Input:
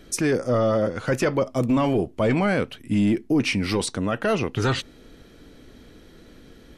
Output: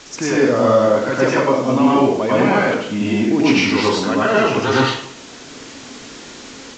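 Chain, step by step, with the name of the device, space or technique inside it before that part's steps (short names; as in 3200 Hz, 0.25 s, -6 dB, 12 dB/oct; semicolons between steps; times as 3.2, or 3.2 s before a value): filmed off a television (BPF 170–7000 Hz; bell 930 Hz +7 dB 0.43 oct; reverb RT60 0.65 s, pre-delay 87 ms, DRR -6.5 dB; white noise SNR 20 dB; AGC gain up to 3.5 dB; AAC 32 kbps 16000 Hz)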